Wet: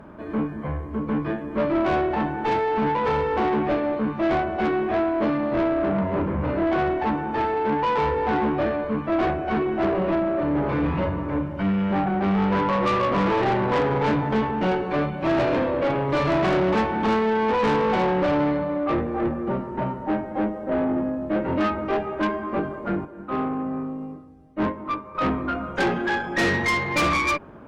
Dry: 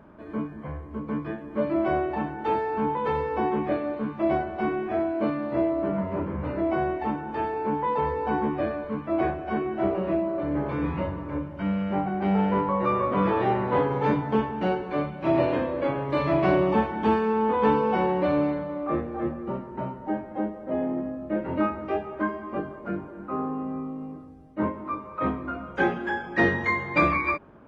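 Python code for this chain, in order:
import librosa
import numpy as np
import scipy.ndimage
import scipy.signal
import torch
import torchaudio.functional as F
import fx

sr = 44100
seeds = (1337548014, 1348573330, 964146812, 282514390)

y = fx.tube_stage(x, sr, drive_db=26.0, bias=0.3)
y = fx.upward_expand(y, sr, threshold_db=-46.0, expansion=1.5, at=(23.05, 25.15))
y = y * librosa.db_to_amplitude(8.0)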